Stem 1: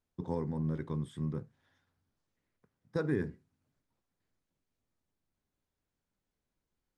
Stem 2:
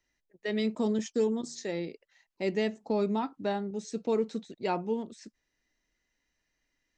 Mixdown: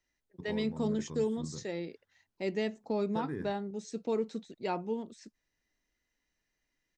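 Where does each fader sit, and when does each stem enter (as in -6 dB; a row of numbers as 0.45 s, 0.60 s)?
-7.0 dB, -3.5 dB; 0.20 s, 0.00 s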